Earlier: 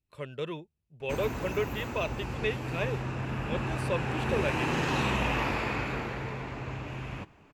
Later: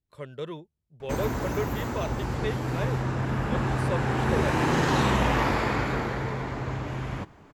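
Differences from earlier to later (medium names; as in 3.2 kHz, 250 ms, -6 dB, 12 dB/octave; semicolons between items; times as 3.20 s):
background +6.0 dB; master: add peaking EQ 2.6 kHz -11 dB 0.31 oct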